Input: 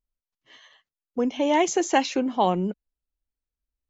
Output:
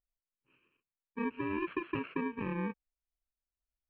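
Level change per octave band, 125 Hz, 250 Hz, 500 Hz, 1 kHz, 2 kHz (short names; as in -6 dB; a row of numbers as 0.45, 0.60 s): -7.5, -11.0, -15.5, -17.5, -9.0 dB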